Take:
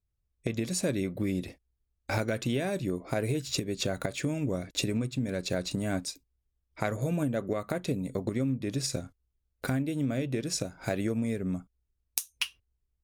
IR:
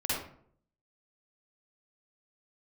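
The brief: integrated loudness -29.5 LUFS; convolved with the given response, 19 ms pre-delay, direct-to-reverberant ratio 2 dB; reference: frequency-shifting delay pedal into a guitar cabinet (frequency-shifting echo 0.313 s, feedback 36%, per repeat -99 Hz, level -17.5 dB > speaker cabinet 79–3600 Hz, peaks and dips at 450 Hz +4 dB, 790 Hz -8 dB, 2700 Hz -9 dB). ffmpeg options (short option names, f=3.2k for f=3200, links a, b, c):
-filter_complex "[0:a]asplit=2[a][b];[1:a]atrim=start_sample=2205,adelay=19[c];[b][c]afir=irnorm=-1:irlink=0,volume=-9.5dB[d];[a][d]amix=inputs=2:normalize=0,asplit=4[e][f][g][h];[f]adelay=313,afreqshift=-99,volume=-17.5dB[i];[g]adelay=626,afreqshift=-198,volume=-26.4dB[j];[h]adelay=939,afreqshift=-297,volume=-35.2dB[k];[e][i][j][k]amix=inputs=4:normalize=0,highpass=79,equalizer=f=450:t=q:w=4:g=4,equalizer=f=790:t=q:w=4:g=-8,equalizer=f=2.7k:t=q:w=4:g=-9,lowpass=f=3.6k:w=0.5412,lowpass=f=3.6k:w=1.3066,volume=1dB"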